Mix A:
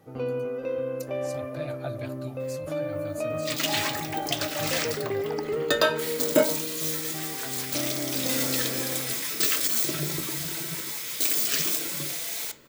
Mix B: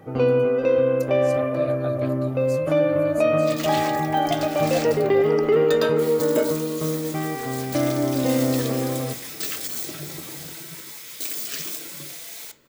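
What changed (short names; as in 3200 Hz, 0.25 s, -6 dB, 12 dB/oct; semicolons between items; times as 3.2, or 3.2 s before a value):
first sound +11.0 dB; second sound -5.0 dB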